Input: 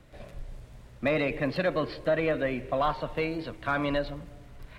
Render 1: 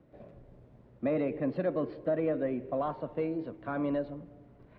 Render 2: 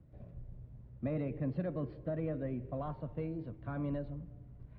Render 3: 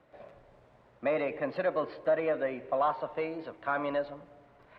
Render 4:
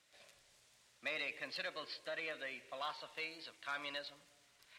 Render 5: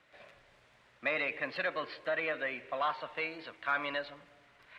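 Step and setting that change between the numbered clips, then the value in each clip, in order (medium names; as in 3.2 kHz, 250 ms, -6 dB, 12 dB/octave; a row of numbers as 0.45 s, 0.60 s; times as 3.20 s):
band-pass filter, frequency: 310 Hz, 110 Hz, 780 Hz, 6.4 kHz, 2 kHz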